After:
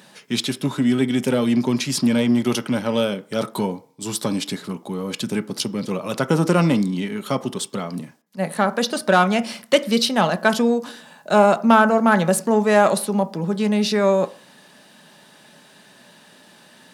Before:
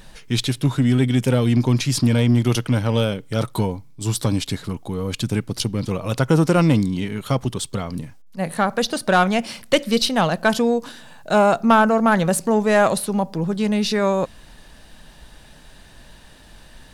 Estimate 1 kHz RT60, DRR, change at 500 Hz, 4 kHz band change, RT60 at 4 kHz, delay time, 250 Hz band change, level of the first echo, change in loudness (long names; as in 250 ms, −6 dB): 0.50 s, 10.0 dB, +1.0 dB, 0.0 dB, 0.45 s, no echo audible, +0.5 dB, no echo audible, 0.0 dB